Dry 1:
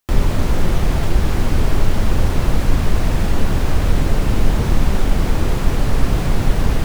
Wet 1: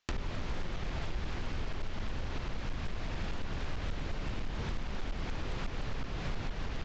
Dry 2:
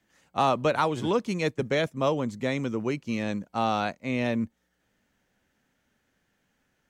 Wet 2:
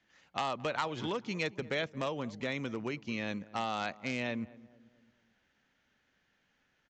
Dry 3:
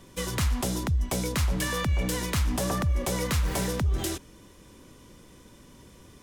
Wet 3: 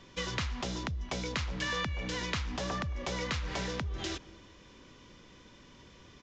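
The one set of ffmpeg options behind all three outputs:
-filter_complex "[0:a]lowpass=4300,aemphasis=mode=reproduction:type=75kf,acompressor=threshold=0.0355:ratio=4,aresample=16000,asoftclip=type=hard:threshold=0.0668,aresample=44100,crystalizer=i=9.5:c=0,asplit=2[s0][s1];[s1]adelay=221,lowpass=f=1100:p=1,volume=0.119,asplit=2[s2][s3];[s3]adelay=221,lowpass=f=1100:p=1,volume=0.49,asplit=2[s4][s5];[s5]adelay=221,lowpass=f=1100:p=1,volume=0.49,asplit=2[s6][s7];[s7]adelay=221,lowpass=f=1100:p=1,volume=0.49[s8];[s2][s4][s6][s8]amix=inputs=4:normalize=0[s9];[s0][s9]amix=inputs=2:normalize=0,volume=0.531"

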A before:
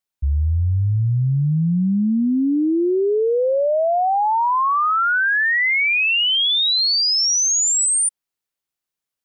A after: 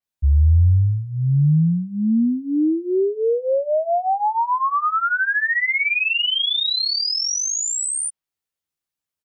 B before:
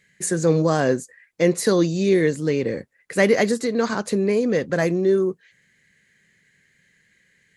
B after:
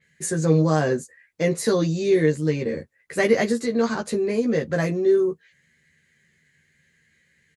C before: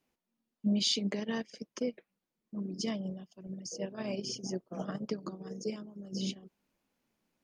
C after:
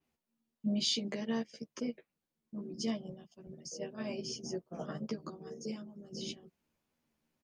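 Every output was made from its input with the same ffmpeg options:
-filter_complex "[0:a]equalizer=f=98:w=1.1:g=5.5,asplit=2[s0][s1];[s1]adelay=13,volume=0.794[s2];[s0][s2]amix=inputs=2:normalize=0,adynamicequalizer=threshold=0.0282:dfrequency=5000:dqfactor=0.7:tfrequency=5000:tqfactor=0.7:attack=5:release=100:ratio=0.375:range=2:mode=cutabove:tftype=highshelf,volume=0.596"

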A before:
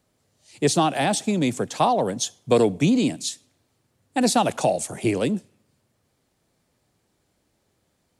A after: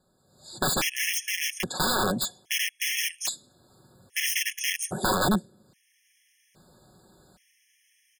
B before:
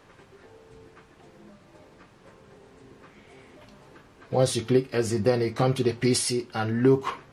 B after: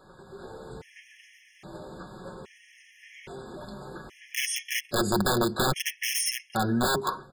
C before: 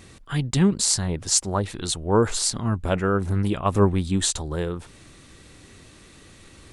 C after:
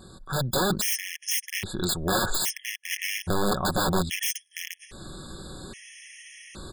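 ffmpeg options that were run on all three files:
-af "aeval=exprs='(mod(8.41*val(0)+1,2)-1)/8.41':c=same,dynaudnorm=f=240:g=3:m=3.98,aecho=1:1:5.4:0.44,acompressor=threshold=0.00794:ratio=1.5,afftfilt=real='re*gt(sin(2*PI*0.61*pts/sr)*(1-2*mod(floor(b*sr/1024/1700),2)),0)':imag='im*gt(sin(2*PI*0.61*pts/sr)*(1-2*mod(floor(b*sr/1024/1700),2)),0)':win_size=1024:overlap=0.75"

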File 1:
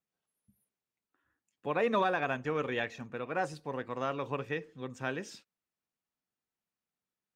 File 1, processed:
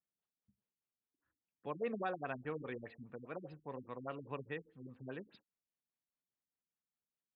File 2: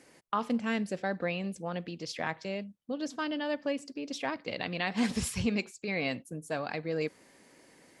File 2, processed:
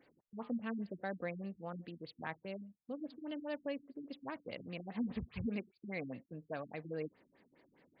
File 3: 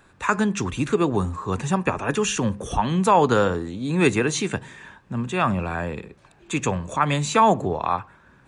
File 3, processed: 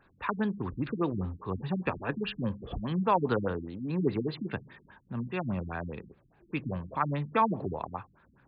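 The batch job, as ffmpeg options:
-af "afftfilt=real='re*lt(b*sr/1024,290*pow(5100/290,0.5+0.5*sin(2*PI*4.9*pts/sr)))':imag='im*lt(b*sr/1024,290*pow(5100/290,0.5+0.5*sin(2*PI*4.9*pts/sr)))':win_size=1024:overlap=0.75,volume=0.398"

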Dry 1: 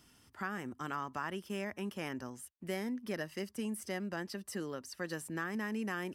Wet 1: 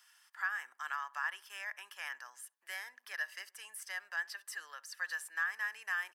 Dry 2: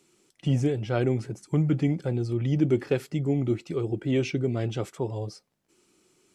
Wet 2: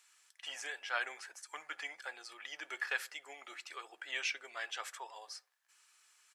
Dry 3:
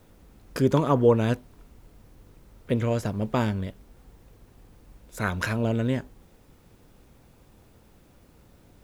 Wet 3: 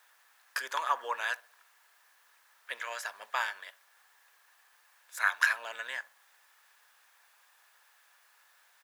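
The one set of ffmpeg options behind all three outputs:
-filter_complex "[0:a]highpass=f=950:w=0.5412,highpass=f=950:w=1.3066,equalizer=f=1700:w=7.5:g=11,asplit=2[s0][s1];[s1]adelay=65,lowpass=f=1300:p=1,volume=0.1,asplit=2[s2][s3];[s3]adelay=65,lowpass=f=1300:p=1,volume=0.51,asplit=2[s4][s5];[s5]adelay=65,lowpass=f=1300:p=1,volume=0.51,asplit=2[s6][s7];[s7]adelay=65,lowpass=f=1300:p=1,volume=0.51[s8];[s2][s4][s6][s8]amix=inputs=4:normalize=0[s9];[s0][s9]amix=inputs=2:normalize=0"

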